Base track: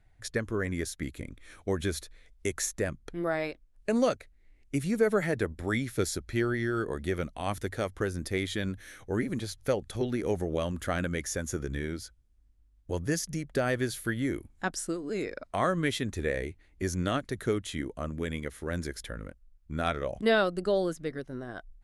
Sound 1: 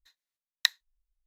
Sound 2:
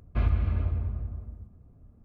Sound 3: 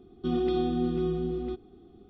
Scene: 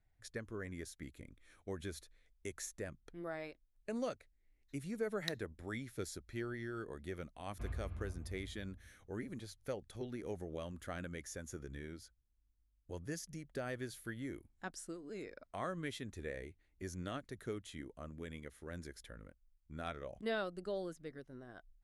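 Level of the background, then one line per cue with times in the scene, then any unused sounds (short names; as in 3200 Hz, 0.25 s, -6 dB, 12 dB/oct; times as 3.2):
base track -13.5 dB
4.63 add 1 -17 dB
7.44 add 2 -18 dB
not used: 3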